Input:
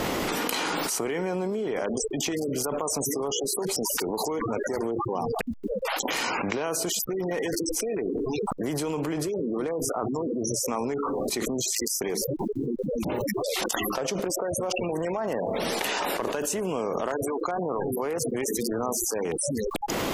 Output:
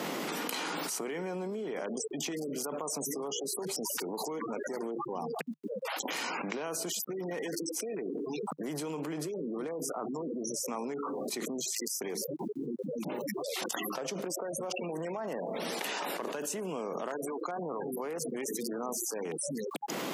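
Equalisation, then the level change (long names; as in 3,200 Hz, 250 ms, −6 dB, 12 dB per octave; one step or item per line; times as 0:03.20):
Chebyshev high-pass filter 150 Hz, order 5
−7.0 dB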